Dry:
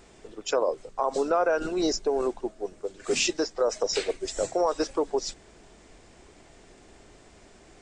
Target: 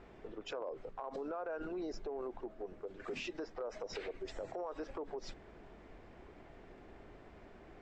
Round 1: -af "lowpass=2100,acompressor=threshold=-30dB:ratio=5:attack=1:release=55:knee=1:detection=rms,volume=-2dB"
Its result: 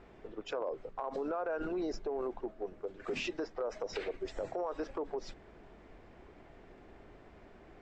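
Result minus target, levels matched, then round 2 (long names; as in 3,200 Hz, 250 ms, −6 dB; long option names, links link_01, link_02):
downward compressor: peak gain reduction −5 dB
-af "lowpass=2100,acompressor=threshold=-36.5dB:ratio=5:attack=1:release=55:knee=1:detection=rms,volume=-2dB"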